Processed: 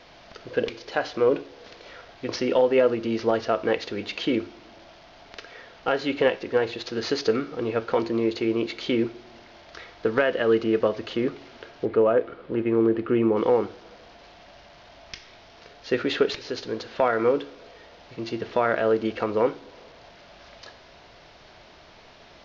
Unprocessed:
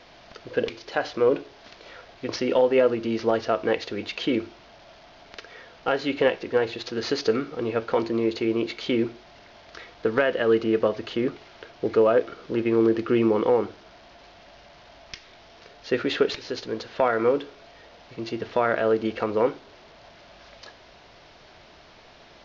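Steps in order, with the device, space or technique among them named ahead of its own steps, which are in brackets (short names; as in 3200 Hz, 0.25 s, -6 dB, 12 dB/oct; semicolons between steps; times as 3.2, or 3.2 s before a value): compressed reverb return (on a send at -10 dB: reverb RT60 1.0 s, pre-delay 19 ms + compressor, threshold -34 dBFS, peak gain reduction 18 dB); 11.85–13.37 on the sum: air absorption 340 m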